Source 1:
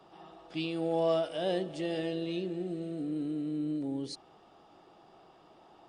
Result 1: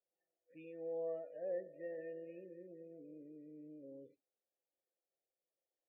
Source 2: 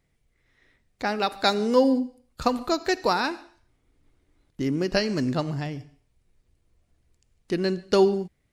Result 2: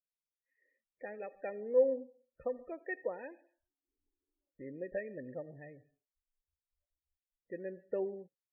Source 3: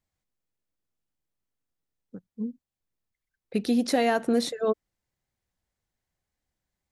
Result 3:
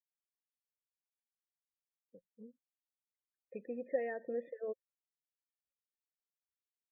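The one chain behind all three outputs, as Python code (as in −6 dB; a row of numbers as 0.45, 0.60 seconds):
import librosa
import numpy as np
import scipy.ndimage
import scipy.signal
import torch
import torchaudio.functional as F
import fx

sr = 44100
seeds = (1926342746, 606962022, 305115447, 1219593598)

y = fx.noise_reduce_blind(x, sr, reduce_db=24)
y = fx.formant_cascade(y, sr, vowel='e')
y = fx.spec_topn(y, sr, count=32)
y = F.gain(torch.from_numpy(y), -4.5).numpy()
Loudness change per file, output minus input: −13.5, −13.0, −14.0 LU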